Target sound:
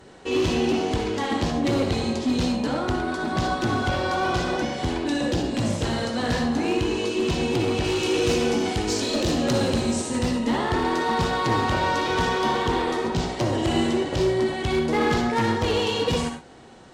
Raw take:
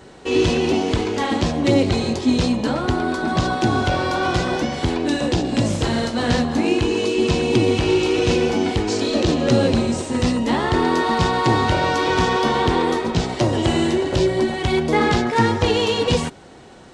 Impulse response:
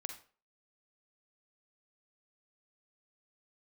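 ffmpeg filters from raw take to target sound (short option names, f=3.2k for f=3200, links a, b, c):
-filter_complex "[0:a]asettb=1/sr,asplit=3[a][b][c];[a]atrim=end=7.844[d];[b]atrim=start=7.84:end=10.19,asetpts=PTS-STARTPTS,afade=t=in:d=0.004:c=qsin,afade=t=out:st=2.346:d=0.004:c=qsin,highshelf=f=5.6k:g=9.5[e];[c]atrim=start=10.186[f];[d][e]acrossfade=d=0.004:c1=hsin:c2=qsin[g];[g][f]acrossfade=d=0.004:c1=qsin:c2=hsin,asoftclip=type=hard:threshold=-13.5dB[h];[1:a]atrim=start_sample=2205,atrim=end_sample=4410,asetrate=33075,aresample=44100[i];[h][i]afir=irnorm=-1:irlink=0,volume=-3dB"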